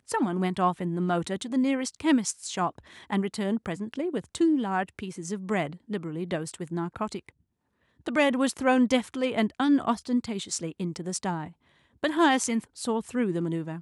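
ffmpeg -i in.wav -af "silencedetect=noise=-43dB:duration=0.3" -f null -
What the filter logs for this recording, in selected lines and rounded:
silence_start: 7.29
silence_end: 8.06 | silence_duration: 0.77
silence_start: 11.51
silence_end: 12.03 | silence_duration: 0.52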